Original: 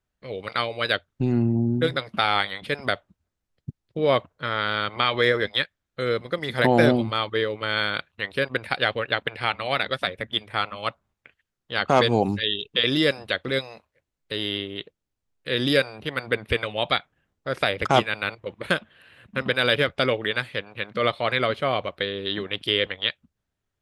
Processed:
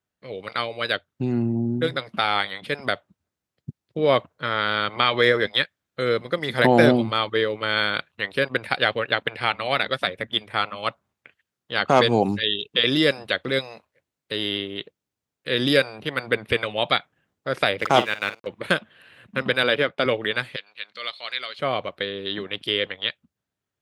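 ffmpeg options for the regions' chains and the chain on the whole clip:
ffmpeg -i in.wav -filter_complex "[0:a]asettb=1/sr,asplit=3[link_01][link_02][link_03];[link_01]atrim=end=17.804[link_04];[link_02]atrim=start=17.8:end=18.47,asetpts=PTS-STARTPTS,afade=type=in:duration=0.004:curve=qsin,afade=type=out:start_time=0.666:duration=0.004:curve=qsin,lowshelf=frequency=110:gain=-9.5,aeval=exprs='sgn(val(0))*max(abs(val(0))-0.00631,0)':channel_layout=same,asplit=2[link_05][link_06];[link_06]adelay=49,volume=-13.5dB[link_07];[link_05][link_07]amix=inputs=2:normalize=0,atrim=end_sample=29547[link_08];[link_03]atrim=start=18.466[link_09];[link_04][link_08]acrossfade=duration=0.004:curve1=hsin:curve2=qsin[link_10];[link_10][link_09]acrossfade=duration=0.004:curve1=qsin:curve2=hsin,asettb=1/sr,asplit=3[link_11][link_12][link_13];[link_11]atrim=end=19.634[link_14];[link_12]atrim=start=19.63:end=20.06,asetpts=PTS-STARTPTS,afade=type=in:duration=0.004:curve=qsin,afade=type=out:start_time=0.426:duration=0.004:curve=qsin,highpass=170,highshelf=frequency=5100:gain=-11,agate=range=-33dB:threshold=-47dB:ratio=3:release=100:detection=peak[link_15];[link_13]atrim=start=20.056[link_16];[link_14][link_15]acrossfade=duration=0.004:curve1=hsin:curve2=qsin[link_17];[link_17][link_16]acrossfade=duration=0.004:curve1=qsin:curve2=hsin,asettb=1/sr,asplit=3[link_18][link_19][link_20];[link_18]atrim=end=20.564[link_21];[link_19]atrim=start=20.56:end=21.59,asetpts=PTS-STARTPTS,afade=type=in:duration=0.004:curve=qsin,afade=type=out:start_time=1.026:duration=0.004:curve=qsin,bandpass=frequency=4800:width_type=q:width=0.82,equalizer=frequency=4300:width=7.4:gain=8.5[link_22];[link_20]atrim=start=21.586[link_23];[link_21][link_22]acrossfade=duration=0.004:curve1=hsin:curve2=qsin[link_24];[link_24][link_23]acrossfade=duration=0.004:curve1=qsin:curve2=hsin,highpass=110,dynaudnorm=framelen=230:gausssize=31:maxgain=11.5dB,volume=-1dB" out.wav

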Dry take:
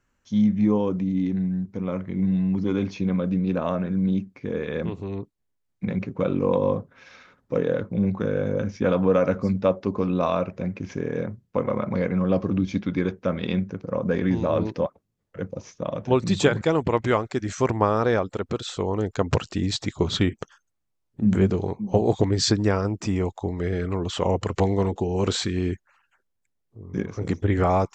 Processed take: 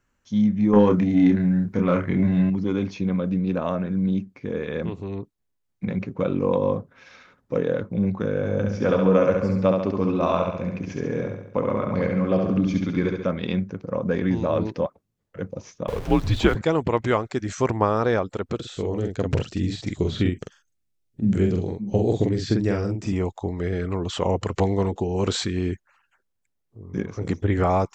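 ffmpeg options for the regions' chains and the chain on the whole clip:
ffmpeg -i in.wav -filter_complex "[0:a]asettb=1/sr,asplit=3[link_01][link_02][link_03];[link_01]atrim=end=0.734[link_04];[link_02]atrim=start=0.73:end=2.5,asetpts=PTS-STARTPTS,afade=type=in:duration=0.004:curve=qsin,afade=type=out:start_time=1.766:duration=0.004:curve=qsin,equalizer=frequency=1600:width=1.6:gain=8,aeval=exprs='0.335*sin(PI/2*1.41*val(0)/0.335)':channel_layout=same,asplit=2[link_05][link_06];[link_06]adelay=29,volume=-5dB[link_07];[link_05][link_07]amix=inputs=2:normalize=0,atrim=end_sample=78057[link_08];[link_03]atrim=start=2.496[link_09];[link_04][link_08]acrossfade=duration=0.004:curve1=hsin:curve2=qsin[link_10];[link_10][link_09]acrossfade=duration=0.004:curve1=qsin:curve2=hsin,asettb=1/sr,asplit=3[link_11][link_12][link_13];[link_11]atrim=end=8.364[link_14];[link_12]atrim=start=8.36:end=13.31,asetpts=PTS-STARTPTS,afade=type=in:duration=0.004:curve=qsin,afade=type=out:start_time=4.946:duration=0.004:curve=qsin,bandreject=frequency=3800:width=26,aecho=1:1:69|138|207|276|345|414|483:0.631|0.334|0.177|0.0939|0.0498|0.0264|0.014,atrim=end_sample=218295[link_15];[link_13]atrim=start=13.306[link_16];[link_14][link_15]acrossfade=duration=0.004:curve1=hsin:curve2=qsin[link_17];[link_17][link_16]acrossfade=duration=0.004:curve1=qsin:curve2=hsin,asettb=1/sr,asplit=3[link_18][link_19][link_20];[link_18]atrim=end=15.884[link_21];[link_19]atrim=start=15.88:end=16.55,asetpts=PTS-STARTPTS,afade=type=in:duration=0.004:curve=qsin,afade=type=out:start_time=0.666:duration=0.004:curve=qsin,aeval=exprs='val(0)+0.5*0.0266*sgn(val(0))':channel_layout=same,acrossover=split=4500[link_22][link_23];[link_23]acompressor=threshold=-47dB:ratio=4:attack=1:release=60[link_24];[link_22][link_24]amix=inputs=2:normalize=0,afreqshift=-86[link_25];[link_20]atrim=start=16.546[link_26];[link_21][link_25]acrossfade=duration=0.004:curve1=hsin:curve2=qsin[link_27];[link_27][link_26]acrossfade=duration=0.004:curve1=qsin:curve2=hsin,asettb=1/sr,asplit=3[link_28][link_29][link_30];[link_28]atrim=end=18.554[link_31];[link_29]atrim=start=18.55:end=23.13,asetpts=PTS-STARTPTS,afade=type=in:duration=0.004:curve=qsin,afade=type=out:start_time=4.576:duration=0.004:curve=qsin,equalizer=frequency=1000:width_type=o:width=1.2:gain=-11.5,asplit=2[link_32][link_33];[link_33]adelay=45,volume=-4dB[link_34];[link_32][link_34]amix=inputs=2:normalize=0,atrim=end_sample=201978,acrossover=split=2700[link_35][link_36];[link_36]acompressor=threshold=-41dB:ratio=4:attack=1:release=60[link_37];[link_35][link_37]amix=inputs=2:normalize=0[link_38];[link_30]atrim=start=23.126[link_39];[link_31][link_38]acrossfade=duration=0.004:curve1=hsin:curve2=qsin[link_40];[link_40][link_39]acrossfade=duration=0.004:curve1=qsin:curve2=hsin" out.wav

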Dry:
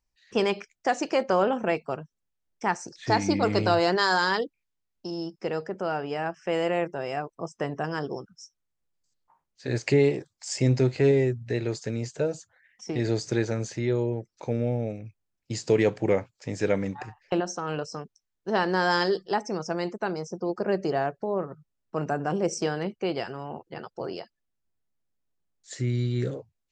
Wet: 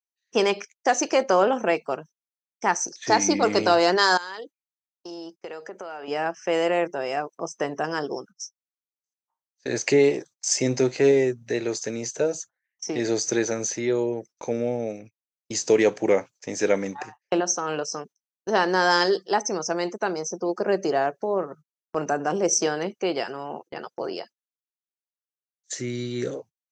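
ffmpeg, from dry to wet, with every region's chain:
ffmpeg -i in.wav -filter_complex "[0:a]asettb=1/sr,asplit=3[link_01][link_02][link_03];[link_01]atrim=end=4.174[link_04];[link_02]atrim=start=4.17:end=6.08,asetpts=PTS-STARTPTS,afade=type=in:duration=0.004:curve=qsin,afade=type=out:start_time=1.906:duration=0.004:curve=qsin,highpass=frequency=460:poles=1,acompressor=threshold=-35dB:ratio=8:attack=3.2:release=140:knee=1:detection=peak,bandreject=frequency=5400:width=5.2[link_05];[link_03]atrim=start=6.076[link_06];[link_04][link_05]acrossfade=duration=0.004:curve1=hsin:curve2=qsin[link_07];[link_07][link_06]acrossfade=duration=0.004:curve1=qsin:curve2=hsin,highpass=260,agate=range=-25dB:threshold=-48dB:ratio=16:detection=peak,equalizer=frequency=6100:width=6.6:gain=14,volume=4dB" out.wav

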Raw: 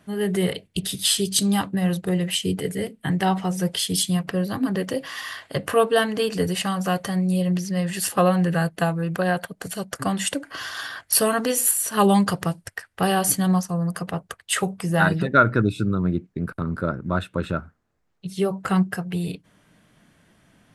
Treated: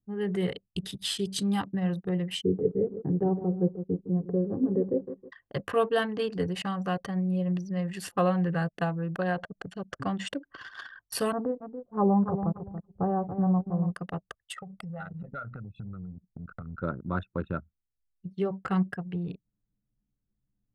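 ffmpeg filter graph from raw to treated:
ffmpeg -i in.wav -filter_complex "[0:a]asettb=1/sr,asplit=3[link_01][link_02][link_03];[link_01]atrim=end=2.424[link_04];[link_02]atrim=start=2.42:end=5.32,asetpts=PTS-STARTPTS,afade=type=in:duration=0.004:curve=qsin,afade=type=out:start_time=2.896:duration=0.004:curve=qsin,lowpass=frequency=430:width_type=q:width=2.9,aecho=1:1:157|314|471|628|785:0.266|0.122|0.0563|0.0259|0.0119,atrim=end_sample=127890[link_05];[link_03]atrim=start=5.316[link_06];[link_04][link_05]acrossfade=duration=0.004:curve1=hsin:curve2=qsin[link_07];[link_07][link_06]acrossfade=duration=0.004:curve1=qsin:curve2=hsin,asettb=1/sr,asplit=3[link_08][link_09][link_10];[link_08]atrim=end=9.384[link_11];[link_09]atrim=start=9.38:end=10.32,asetpts=PTS-STARTPTS,afade=type=in:duration=0.004:curve=qsin,afade=type=out:start_time=0.936:duration=0.004:curve=qsin,lowpass=6700,acompressor=mode=upward:threshold=-26dB:ratio=2.5:attack=3.2:release=140:knee=2.83:detection=peak[link_12];[link_10]atrim=start=10.316[link_13];[link_11][link_12]acrossfade=duration=0.004:curve1=hsin:curve2=qsin[link_14];[link_14][link_13]acrossfade=duration=0.004:curve1=qsin:curve2=hsin,asettb=1/sr,asplit=3[link_15][link_16][link_17];[link_15]atrim=end=11.324[link_18];[link_16]atrim=start=11.32:end=13.94,asetpts=PTS-STARTPTS,afade=type=in:duration=0.004:curve=qsin,afade=type=out:start_time=2.616:duration=0.004:curve=qsin,lowpass=frequency=1000:width=0.5412,lowpass=frequency=1000:width=1.3066,equalizer=frequency=61:width=0.97:gain=8,aecho=1:1:282|564|846:0.355|0.106|0.0319,atrim=end_sample=115542[link_19];[link_17]atrim=start=13.936[link_20];[link_18][link_19]acrossfade=duration=0.004:curve1=hsin:curve2=qsin[link_21];[link_21][link_20]acrossfade=duration=0.004:curve1=qsin:curve2=hsin,asettb=1/sr,asplit=3[link_22][link_23][link_24];[link_22]atrim=end=14.524[link_25];[link_23]atrim=start=14.52:end=16.83,asetpts=PTS-STARTPTS,afade=type=in:duration=0.004:curve=qsin,afade=type=out:start_time=2.306:duration=0.004:curve=qsin,acompressor=threshold=-30dB:ratio=12:attack=3.2:release=140:knee=1:detection=peak,aecho=1:1:1.5:0.87,atrim=end_sample=101871[link_26];[link_24]atrim=start=16.826[link_27];[link_25][link_26]acrossfade=duration=0.004:curve1=hsin:curve2=qsin[link_28];[link_28][link_27]acrossfade=duration=0.004:curve1=qsin:curve2=hsin,anlmdn=39.8,aemphasis=mode=reproduction:type=50fm,bandreject=frequency=630:width=12,volume=-6.5dB" out.wav

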